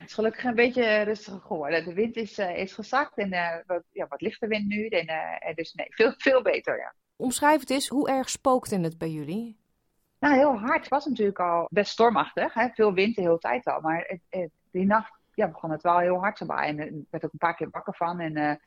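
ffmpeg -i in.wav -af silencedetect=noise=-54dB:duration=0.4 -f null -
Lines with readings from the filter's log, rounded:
silence_start: 9.53
silence_end: 10.23 | silence_duration: 0.69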